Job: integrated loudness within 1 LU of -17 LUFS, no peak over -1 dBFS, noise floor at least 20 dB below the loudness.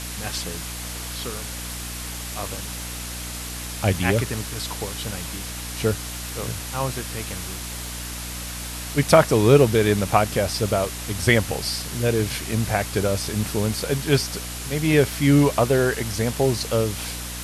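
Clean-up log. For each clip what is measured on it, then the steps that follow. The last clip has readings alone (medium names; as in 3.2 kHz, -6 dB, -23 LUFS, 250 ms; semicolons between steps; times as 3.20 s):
hum 60 Hz; highest harmonic 300 Hz; hum level -33 dBFS; noise floor -32 dBFS; noise floor target -43 dBFS; loudness -23.0 LUFS; peak level -2.5 dBFS; loudness target -17.0 LUFS
-> hum notches 60/120/180/240/300 Hz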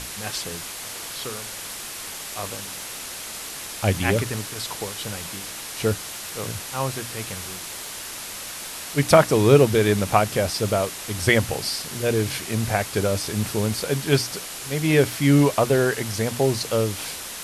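hum not found; noise floor -35 dBFS; noise floor target -44 dBFS
-> noise reduction 9 dB, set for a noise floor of -35 dBFS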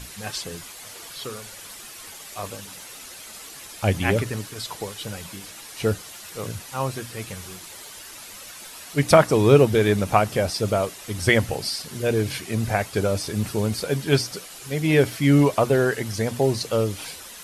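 noise floor -41 dBFS; noise floor target -43 dBFS
-> noise reduction 6 dB, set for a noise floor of -41 dBFS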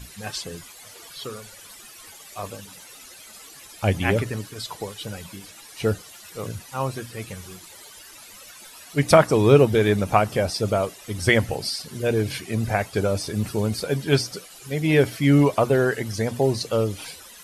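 noise floor -45 dBFS; loudness -22.5 LUFS; peak level -2.5 dBFS; loudness target -17.0 LUFS
-> trim +5.5 dB; peak limiter -1 dBFS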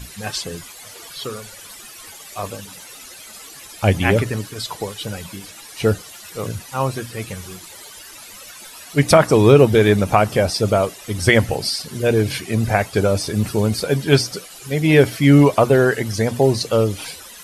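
loudness -17.5 LUFS; peak level -1.0 dBFS; noise floor -40 dBFS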